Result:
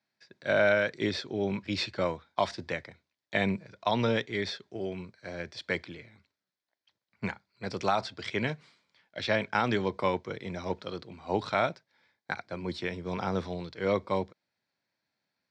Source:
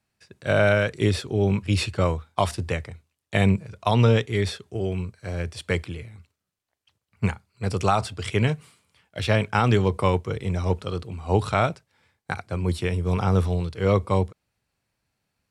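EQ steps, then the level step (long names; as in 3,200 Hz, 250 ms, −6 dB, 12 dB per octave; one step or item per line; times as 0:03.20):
loudspeaker in its box 200–5,100 Hz, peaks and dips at 440 Hz −6 dB, 780 Hz −4 dB, 1,200 Hz −8 dB, 2,800 Hz −10 dB
low-shelf EQ 360 Hz −6.5 dB
0.0 dB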